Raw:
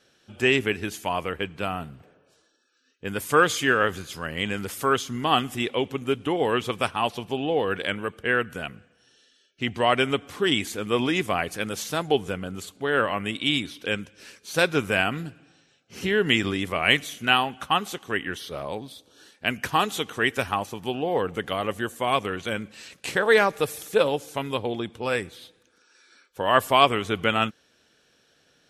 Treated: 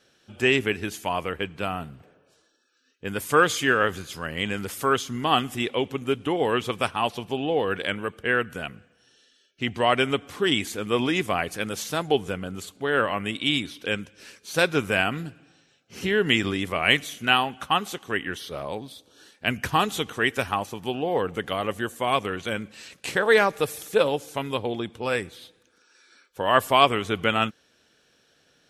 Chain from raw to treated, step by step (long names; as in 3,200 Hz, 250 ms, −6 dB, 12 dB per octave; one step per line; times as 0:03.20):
0:19.47–0:20.13: low-shelf EQ 110 Hz +11.5 dB